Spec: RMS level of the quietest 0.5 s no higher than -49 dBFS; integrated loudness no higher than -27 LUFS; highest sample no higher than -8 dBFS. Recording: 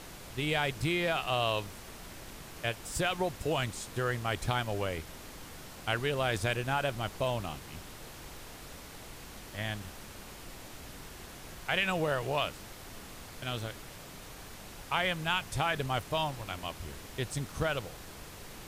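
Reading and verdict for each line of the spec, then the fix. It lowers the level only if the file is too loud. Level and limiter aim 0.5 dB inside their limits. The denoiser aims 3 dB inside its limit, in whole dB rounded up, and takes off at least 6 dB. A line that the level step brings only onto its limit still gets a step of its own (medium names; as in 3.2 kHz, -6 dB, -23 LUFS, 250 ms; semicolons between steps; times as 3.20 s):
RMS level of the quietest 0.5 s -47 dBFS: fail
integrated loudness -33.0 LUFS: pass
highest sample -14.5 dBFS: pass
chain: noise reduction 6 dB, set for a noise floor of -47 dBFS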